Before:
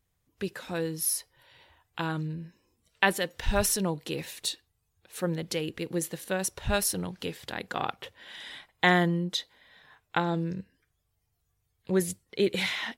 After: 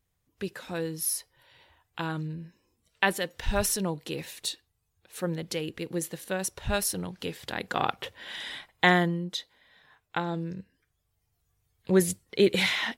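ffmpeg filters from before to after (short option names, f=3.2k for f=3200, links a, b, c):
-af "volume=13dB,afade=t=in:st=7.13:d=1.19:silence=0.446684,afade=t=out:st=8.32:d=0.86:silence=0.354813,afade=t=in:st=10.56:d=1.43:silence=0.446684"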